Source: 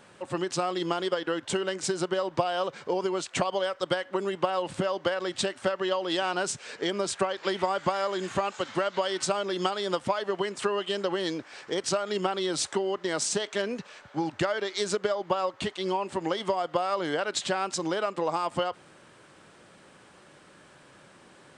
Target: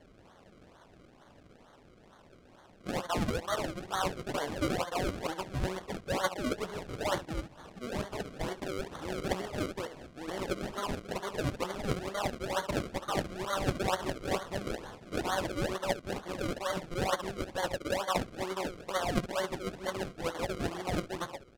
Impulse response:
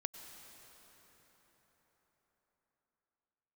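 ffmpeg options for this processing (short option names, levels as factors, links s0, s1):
-filter_complex "[0:a]areverse,equalizer=f=130:t=o:w=1.7:g=-9.5,acrossover=split=660|3300[s0][s1][s2];[s2]acompressor=threshold=0.002:ratio=12[s3];[s0][s1][s3]amix=inputs=3:normalize=0,equalizer=f=380:t=o:w=0.98:g=-8.5,aecho=1:1:16|70:0.376|0.266,acrusher=samples=34:mix=1:aa=0.000001:lfo=1:lforange=34:lforate=2.2,adynamicsmooth=sensitivity=7:basefreq=7600,volume=0.841"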